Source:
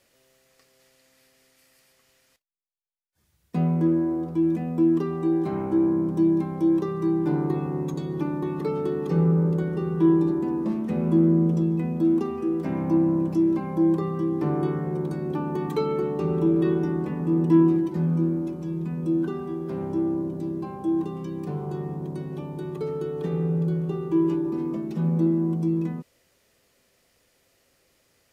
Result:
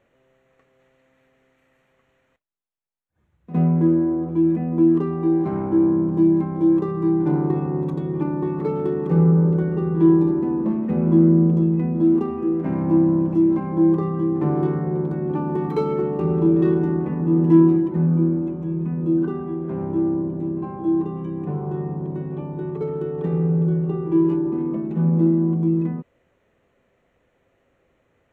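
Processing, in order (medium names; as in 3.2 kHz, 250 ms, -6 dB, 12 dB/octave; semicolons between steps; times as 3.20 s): local Wiener filter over 9 samples; treble shelf 3.2 kHz -9 dB; on a send: reverse echo 60 ms -15 dB; on the sum: trim +4 dB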